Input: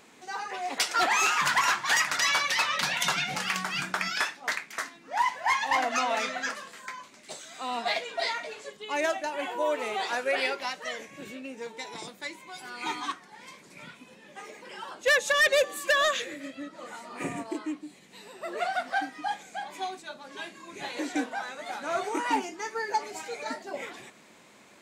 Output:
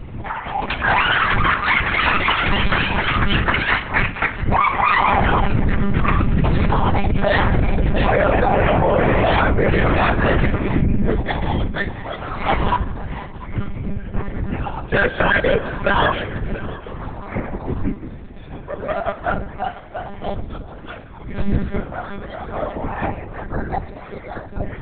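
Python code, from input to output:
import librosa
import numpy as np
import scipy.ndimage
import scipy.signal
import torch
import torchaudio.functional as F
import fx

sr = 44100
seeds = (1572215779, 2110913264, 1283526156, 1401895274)

p1 = fx.dmg_wind(x, sr, seeds[0], corner_hz=91.0, level_db=-32.0)
p2 = fx.doppler_pass(p1, sr, speed_mps=40, closest_m=6.3, pass_at_s=7.16)
p3 = fx.high_shelf(p2, sr, hz=2900.0, db=-8.5)
p4 = fx.whisperise(p3, sr, seeds[1])
p5 = 10.0 ** (-34.0 / 20.0) * (np.abs((p4 / 10.0 ** (-34.0 / 20.0) + 3.0) % 4.0 - 2.0) - 1.0)
p6 = p4 + F.gain(torch.from_numpy(p5), -11.0).numpy()
p7 = fx.air_absorb(p6, sr, metres=170.0)
p8 = p7 + fx.echo_single(p7, sr, ms=689, db=-18.5, dry=0)
p9 = fx.room_shoebox(p8, sr, seeds[2], volume_m3=3000.0, walls='mixed', distance_m=0.4)
p10 = fx.lpc_monotone(p9, sr, seeds[3], pitch_hz=200.0, order=10)
p11 = fx.env_flatten(p10, sr, amount_pct=100)
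y = F.gain(torch.from_numpy(p11), 2.5).numpy()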